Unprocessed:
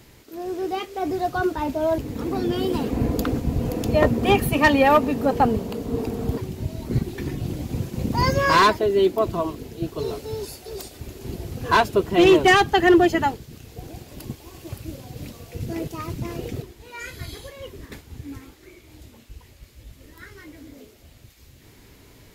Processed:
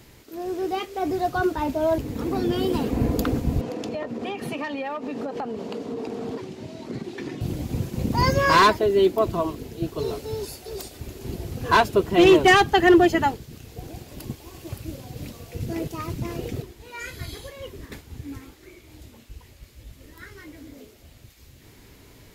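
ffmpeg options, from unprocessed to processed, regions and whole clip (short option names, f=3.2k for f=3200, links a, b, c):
-filter_complex "[0:a]asettb=1/sr,asplit=3[a][b][c];[a]atrim=end=3.614[d];[b]atrim=start=3.61:end=7.41,asetpts=PTS-STARTPTS,afade=t=in:d=0.004:c=qsin,afade=t=out:st=3.796:d=0.004:c=qsin,highpass=240,lowpass=6.1k,acompressor=threshold=-26dB:ratio=16:attack=3.2:release=140:knee=1:detection=peak[e];[c]atrim=start=7.406[f];[d][e]acrossfade=d=0.004:c1=hsin:c2=qsin[g];[g][f]acrossfade=d=0.004:c1=qsin:c2=hsin"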